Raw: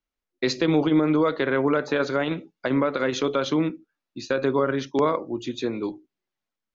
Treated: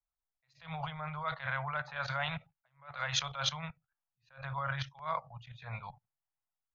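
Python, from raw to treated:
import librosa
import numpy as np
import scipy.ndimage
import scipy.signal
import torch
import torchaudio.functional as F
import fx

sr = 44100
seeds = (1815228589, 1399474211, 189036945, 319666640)

y = fx.level_steps(x, sr, step_db=16)
y = scipy.signal.sosfilt(scipy.signal.cheby1(3, 1.0, [140.0, 720.0], 'bandstop', fs=sr, output='sos'), y)
y = fx.env_lowpass(y, sr, base_hz=1200.0, full_db=-29.0)
y = fx.attack_slew(y, sr, db_per_s=170.0)
y = y * 10.0 ** (4.5 / 20.0)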